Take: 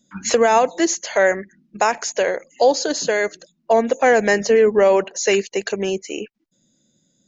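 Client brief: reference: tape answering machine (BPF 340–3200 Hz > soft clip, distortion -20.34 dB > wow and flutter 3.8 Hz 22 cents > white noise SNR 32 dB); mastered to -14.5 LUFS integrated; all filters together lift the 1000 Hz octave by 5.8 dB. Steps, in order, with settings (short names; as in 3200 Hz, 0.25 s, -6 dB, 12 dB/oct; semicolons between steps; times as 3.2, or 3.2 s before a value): BPF 340–3200 Hz; bell 1000 Hz +8 dB; soft clip -3.5 dBFS; wow and flutter 3.8 Hz 22 cents; white noise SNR 32 dB; gain +3 dB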